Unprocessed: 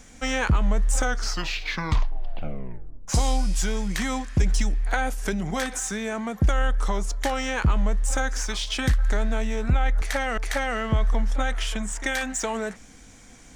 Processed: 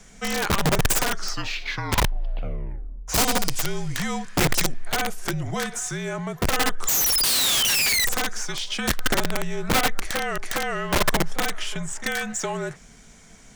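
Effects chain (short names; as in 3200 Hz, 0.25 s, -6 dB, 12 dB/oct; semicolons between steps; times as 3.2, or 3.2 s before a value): frequency shift -46 Hz; painted sound fall, 6.87–8.06, 1900–7200 Hz -21 dBFS; wrapped overs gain 16 dB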